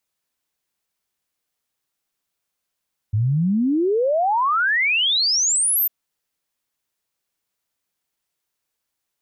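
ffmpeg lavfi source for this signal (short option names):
-f lavfi -i "aevalsrc='0.158*clip(min(t,2.75-t)/0.01,0,1)*sin(2*PI*100*2.75/log(14000/100)*(exp(log(14000/100)*t/2.75)-1))':d=2.75:s=44100"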